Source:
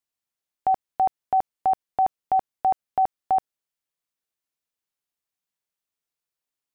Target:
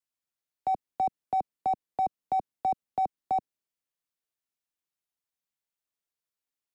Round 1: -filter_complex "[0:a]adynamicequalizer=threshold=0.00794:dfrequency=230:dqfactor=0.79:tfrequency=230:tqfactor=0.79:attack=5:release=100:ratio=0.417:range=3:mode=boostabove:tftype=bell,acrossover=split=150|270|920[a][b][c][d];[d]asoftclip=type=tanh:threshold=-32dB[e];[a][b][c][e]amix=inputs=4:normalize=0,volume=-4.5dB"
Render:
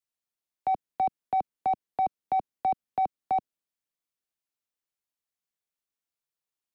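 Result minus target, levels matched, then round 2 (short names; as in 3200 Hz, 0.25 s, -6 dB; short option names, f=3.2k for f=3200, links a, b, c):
soft clip: distortion -6 dB
-filter_complex "[0:a]adynamicequalizer=threshold=0.00794:dfrequency=230:dqfactor=0.79:tfrequency=230:tqfactor=0.79:attack=5:release=100:ratio=0.417:range=3:mode=boostabove:tftype=bell,acrossover=split=150|270|920[a][b][c][d];[d]asoftclip=type=tanh:threshold=-43.5dB[e];[a][b][c][e]amix=inputs=4:normalize=0,volume=-4.5dB"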